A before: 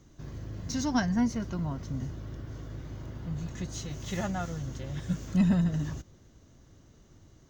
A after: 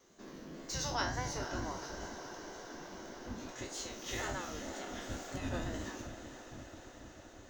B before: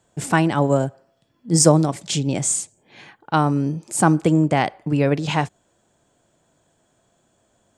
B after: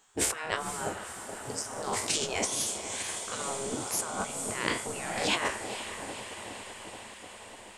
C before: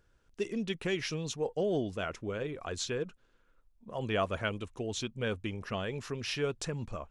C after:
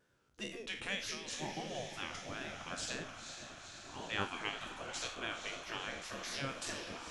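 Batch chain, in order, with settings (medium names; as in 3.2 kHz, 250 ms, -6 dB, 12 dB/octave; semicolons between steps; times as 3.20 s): spectral sustain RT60 0.44 s; compressor with a negative ratio -24 dBFS, ratio -1; wow and flutter 70 cents; echo that smears into a reverb 492 ms, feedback 72%, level -10.5 dB; spectral gate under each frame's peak -10 dB weak; trim -2 dB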